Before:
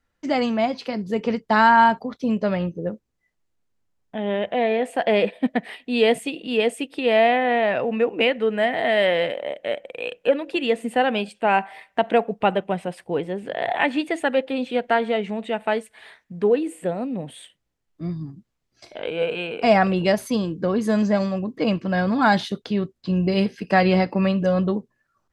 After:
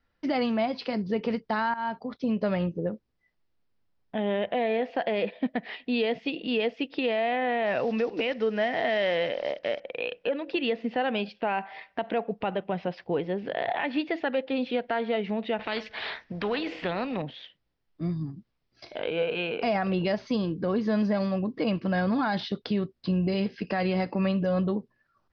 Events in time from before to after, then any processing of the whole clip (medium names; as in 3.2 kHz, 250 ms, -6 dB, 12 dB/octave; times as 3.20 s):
1.74–2.45 s: fade in, from -16 dB
7.66–9.80 s: block-companded coder 5-bit
15.59–17.22 s: spectrum-flattening compressor 2:1
whole clip: steep low-pass 5.5 kHz 72 dB/octave; compression 2:1, threshold -26 dBFS; peak limiter -18 dBFS